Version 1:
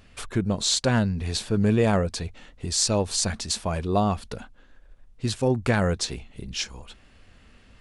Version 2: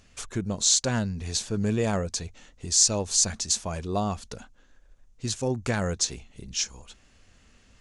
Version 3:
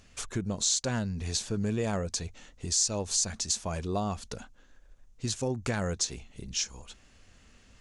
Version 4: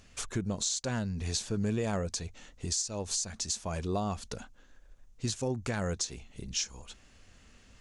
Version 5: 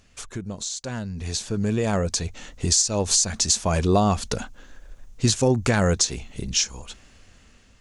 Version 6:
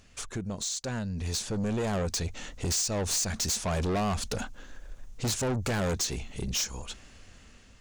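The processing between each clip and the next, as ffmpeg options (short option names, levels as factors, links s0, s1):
-af "equalizer=f=6500:t=o:w=0.69:g=12.5,volume=0.562"
-af "acompressor=threshold=0.0355:ratio=2"
-af "alimiter=limit=0.0891:level=0:latency=1:release=315"
-af "dynaudnorm=f=550:g=7:m=4.47"
-af "asoftclip=type=tanh:threshold=0.0501"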